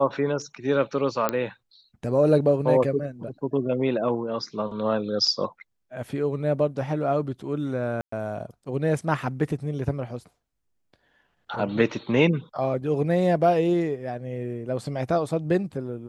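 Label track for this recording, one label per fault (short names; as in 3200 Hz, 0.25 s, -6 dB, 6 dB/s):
1.290000	1.290000	pop -9 dBFS
8.010000	8.120000	gap 0.114 s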